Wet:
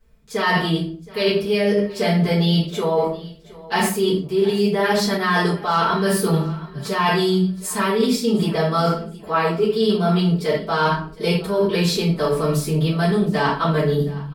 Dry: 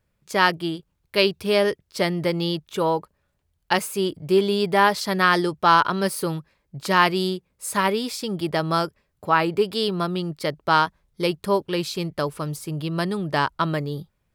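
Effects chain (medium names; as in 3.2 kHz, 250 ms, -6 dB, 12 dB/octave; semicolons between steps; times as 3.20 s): hum notches 50/100/150/200 Hz; comb 4.5 ms, depth 50%; simulated room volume 42 m³, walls mixed, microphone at 2 m; reverse; compression, threshold -15 dBFS, peak gain reduction 14 dB; reverse; peaking EQ 120 Hz +4 dB 2.1 oct; band-stop 550 Hz, Q 12; on a send: feedback delay 719 ms, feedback 27%, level -20 dB; on the sum: trim -2 dB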